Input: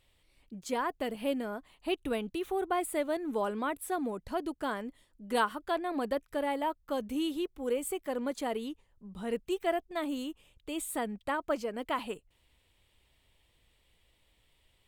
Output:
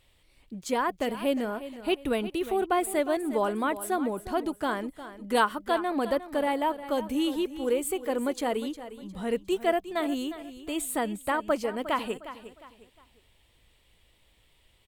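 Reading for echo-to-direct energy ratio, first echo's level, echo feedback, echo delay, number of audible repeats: −13.0 dB, −13.5 dB, 34%, 357 ms, 3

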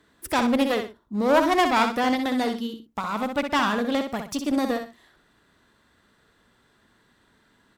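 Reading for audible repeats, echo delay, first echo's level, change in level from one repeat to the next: 2, 63 ms, −7.0 dB, −11.5 dB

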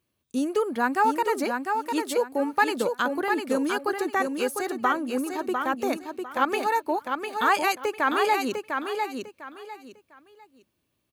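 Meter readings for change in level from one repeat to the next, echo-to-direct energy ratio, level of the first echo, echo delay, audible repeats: −12.0 dB, −4.5 dB, −5.0 dB, 701 ms, 3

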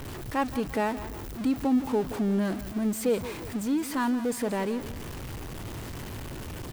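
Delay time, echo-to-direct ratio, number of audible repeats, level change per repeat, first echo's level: 171 ms, −14.0 dB, 2, −7.5 dB, −14.5 dB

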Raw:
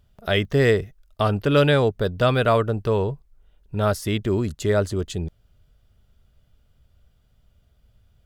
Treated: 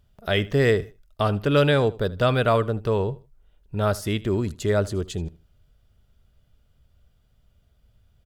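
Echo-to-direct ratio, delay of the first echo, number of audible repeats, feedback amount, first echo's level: −19.5 dB, 78 ms, 2, 26%, −20.0 dB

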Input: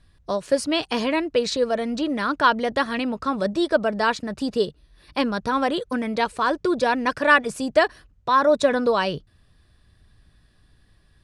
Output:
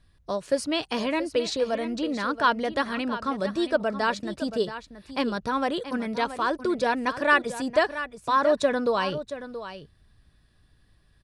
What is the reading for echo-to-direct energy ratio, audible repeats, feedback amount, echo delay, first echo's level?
−12.0 dB, 1, repeats not evenly spaced, 677 ms, −12.0 dB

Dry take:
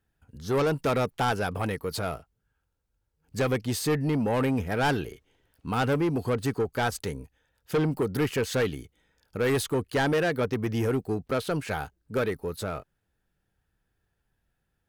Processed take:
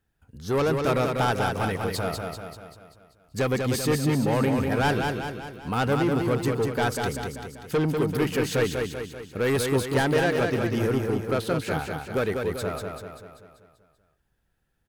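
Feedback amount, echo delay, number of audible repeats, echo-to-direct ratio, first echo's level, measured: 53%, 194 ms, 6, −3.0 dB, −4.5 dB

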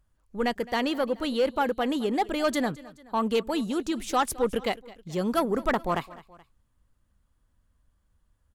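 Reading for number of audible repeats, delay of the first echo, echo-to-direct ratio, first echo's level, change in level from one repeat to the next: 2, 213 ms, −19.0 dB, −20.0 dB, −5.5 dB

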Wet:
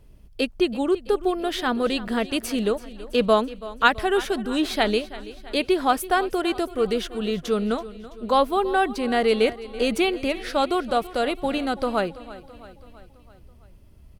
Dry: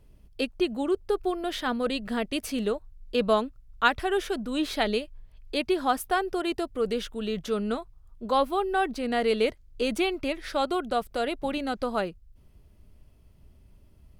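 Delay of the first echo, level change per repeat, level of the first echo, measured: 331 ms, −5.0 dB, −17.0 dB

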